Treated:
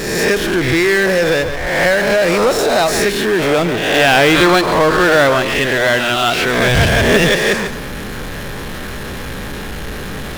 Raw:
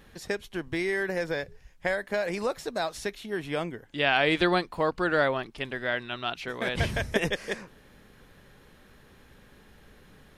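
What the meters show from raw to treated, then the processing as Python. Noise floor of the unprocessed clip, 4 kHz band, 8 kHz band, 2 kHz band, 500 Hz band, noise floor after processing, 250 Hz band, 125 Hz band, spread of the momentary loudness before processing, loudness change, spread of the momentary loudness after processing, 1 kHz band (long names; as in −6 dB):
−56 dBFS, +17.0 dB, +23.0 dB, +16.0 dB, +16.0 dB, −26 dBFS, +16.0 dB, +17.0 dB, 11 LU, +16.0 dB, 15 LU, +15.5 dB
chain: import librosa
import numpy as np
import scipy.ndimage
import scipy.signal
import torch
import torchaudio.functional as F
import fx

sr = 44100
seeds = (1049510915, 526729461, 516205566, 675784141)

p1 = fx.spec_swells(x, sr, rise_s=0.7)
p2 = p1 + fx.echo_single(p1, sr, ms=144, db=-15.5, dry=0)
p3 = fx.power_curve(p2, sr, exponent=0.5)
y = F.gain(torch.from_numpy(p3), 5.0).numpy()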